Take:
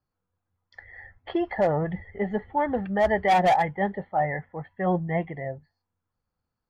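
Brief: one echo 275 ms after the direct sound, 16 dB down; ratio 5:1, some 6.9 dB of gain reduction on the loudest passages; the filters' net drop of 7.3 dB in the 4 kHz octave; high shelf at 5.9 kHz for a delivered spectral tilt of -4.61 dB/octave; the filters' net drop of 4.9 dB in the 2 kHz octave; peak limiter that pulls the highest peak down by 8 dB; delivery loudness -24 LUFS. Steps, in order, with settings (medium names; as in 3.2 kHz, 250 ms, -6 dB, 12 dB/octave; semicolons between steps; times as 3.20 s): peaking EQ 2 kHz -3.5 dB; peaking EQ 4 kHz -6.5 dB; treble shelf 5.9 kHz -6 dB; compression 5:1, threshold -25 dBFS; peak limiter -26 dBFS; delay 275 ms -16 dB; trim +10.5 dB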